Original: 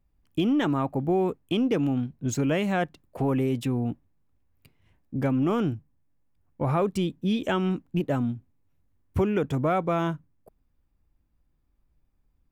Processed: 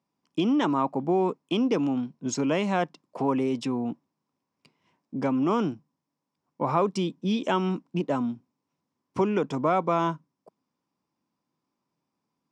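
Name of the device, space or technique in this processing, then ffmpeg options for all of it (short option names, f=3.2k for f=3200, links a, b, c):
television speaker: -af "highpass=f=170:w=0.5412,highpass=f=170:w=1.3066,equalizer=f=1k:t=q:w=4:g=9,equalizer=f=1.7k:t=q:w=4:g=-4,equalizer=f=5.3k:t=q:w=4:g=9,lowpass=f=8.2k:w=0.5412,lowpass=f=8.2k:w=1.3066"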